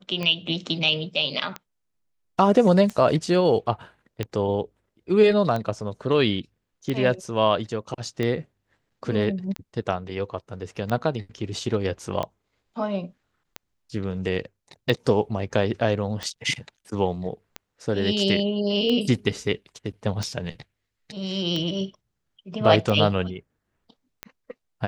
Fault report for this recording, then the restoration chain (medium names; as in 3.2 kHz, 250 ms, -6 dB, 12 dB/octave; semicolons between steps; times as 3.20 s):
tick 45 rpm -15 dBFS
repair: de-click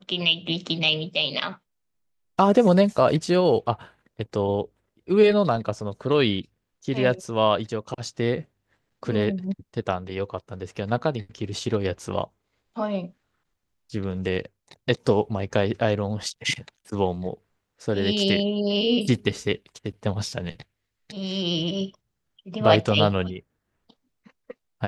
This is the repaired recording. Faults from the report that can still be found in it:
nothing left